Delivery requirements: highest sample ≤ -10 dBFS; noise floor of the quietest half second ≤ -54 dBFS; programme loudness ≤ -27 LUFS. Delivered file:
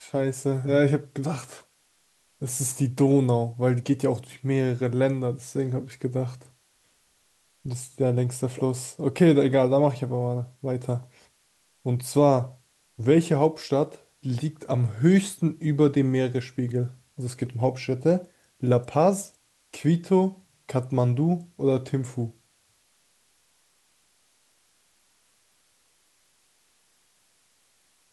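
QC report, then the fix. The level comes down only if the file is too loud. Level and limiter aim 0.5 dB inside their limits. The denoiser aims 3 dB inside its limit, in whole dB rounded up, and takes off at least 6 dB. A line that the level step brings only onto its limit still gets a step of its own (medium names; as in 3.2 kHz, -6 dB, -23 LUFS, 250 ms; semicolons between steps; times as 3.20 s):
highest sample -6.5 dBFS: fail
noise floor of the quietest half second -66 dBFS: pass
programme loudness -25.0 LUFS: fail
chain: trim -2.5 dB; peak limiter -10.5 dBFS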